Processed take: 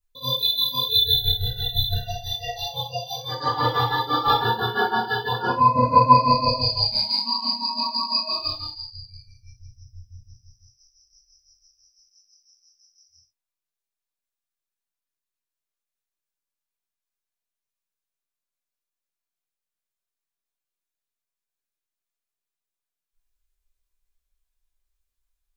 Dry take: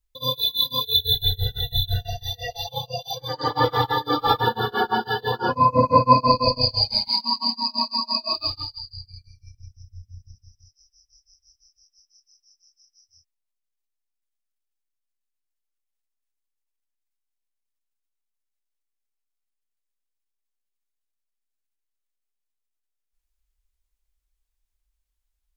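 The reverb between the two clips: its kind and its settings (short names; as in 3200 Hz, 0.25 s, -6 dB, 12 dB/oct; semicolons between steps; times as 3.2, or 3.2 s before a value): non-linear reverb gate 0.11 s falling, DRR -4.5 dB; gain -5.5 dB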